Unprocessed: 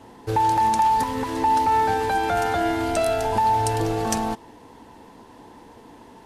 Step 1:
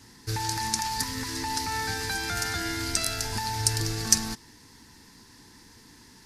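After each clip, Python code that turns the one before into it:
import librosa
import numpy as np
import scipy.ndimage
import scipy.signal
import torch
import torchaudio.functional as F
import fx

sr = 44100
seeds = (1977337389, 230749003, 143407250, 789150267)

y = fx.curve_eq(x, sr, hz=(140.0, 210.0, 380.0, 620.0, 1800.0, 3100.0, 4900.0, 8000.0), db=(0, -4, -9, -20, 3, -2, 14, 8))
y = F.gain(torch.from_numpy(y), -2.0).numpy()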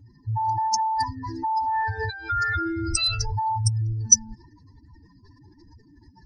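y = fx.spec_expand(x, sr, power=3.8)
y = y + 0.73 * np.pad(y, (int(2.2 * sr / 1000.0), 0))[:len(y)]
y = F.gain(torch.from_numpy(y), 2.5).numpy()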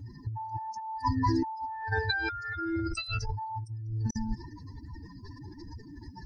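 y = fx.over_compress(x, sr, threshold_db=-31.0, ratio=-0.5)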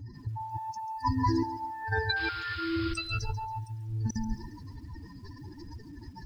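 y = fx.spec_paint(x, sr, seeds[0], shape='noise', start_s=2.16, length_s=0.78, low_hz=1000.0, high_hz=5200.0, level_db=-44.0)
y = fx.echo_crushed(y, sr, ms=139, feedback_pct=35, bits=9, wet_db=-14.0)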